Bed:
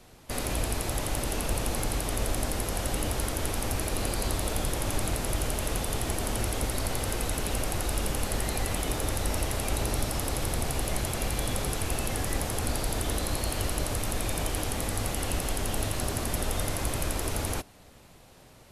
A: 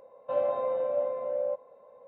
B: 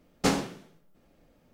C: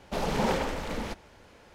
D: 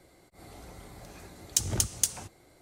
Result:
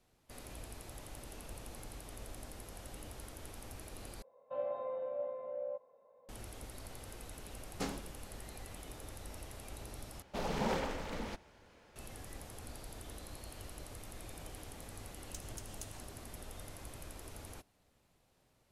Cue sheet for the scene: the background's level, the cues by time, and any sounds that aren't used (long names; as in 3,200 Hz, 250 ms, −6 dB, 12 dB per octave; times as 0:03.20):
bed −19 dB
0:04.22: overwrite with A −10.5 dB
0:07.56: mix in B −14.5 dB
0:10.22: overwrite with C −7.5 dB
0:13.78: mix in D −5 dB + downward compressor 2 to 1, threshold −54 dBFS